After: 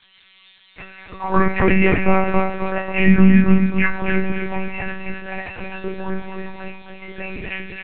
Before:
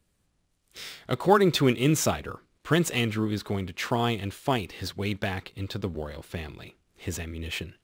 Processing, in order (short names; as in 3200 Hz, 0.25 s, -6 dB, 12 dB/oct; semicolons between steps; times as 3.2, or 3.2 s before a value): steep low-pass 2700 Hz 96 dB/oct; notches 50/100/150/200/250/300 Hz; gate with hold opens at -44 dBFS; comb 5.5 ms, depth 47%; auto swell 0.251 s; added noise violet -45 dBFS; metallic resonator 220 Hz, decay 0.56 s, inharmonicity 0.002; feedback echo 0.266 s, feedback 45%, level -6 dB; monotone LPC vocoder at 8 kHz 190 Hz; maximiser +31.5 dB; gain -1 dB